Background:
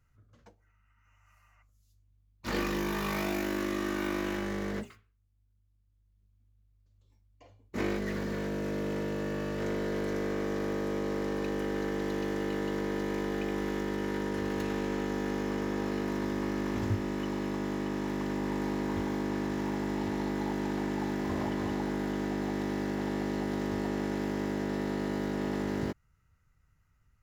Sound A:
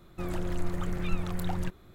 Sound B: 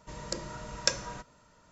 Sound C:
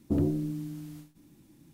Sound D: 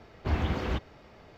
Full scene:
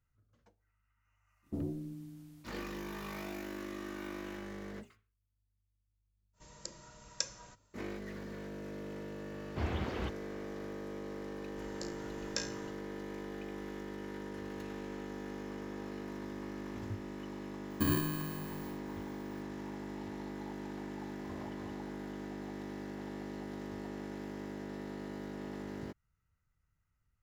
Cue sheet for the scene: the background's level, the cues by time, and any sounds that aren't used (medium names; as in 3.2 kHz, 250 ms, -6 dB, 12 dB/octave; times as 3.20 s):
background -10.5 dB
1.42 s: add C -11 dB, fades 0.05 s
6.33 s: add B -14.5 dB, fades 0.05 s + treble shelf 5 kHz +12 dB
9.31 s: add D -6.5 dB + high-pass 62 Hz
11.49 s: add B -2.5 dB + feedback comb 58 Hz, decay 0.38 s, mix 90%
17.70 s: add C -4.5 dB + bit-reversed sample order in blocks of 32 samples
not used: A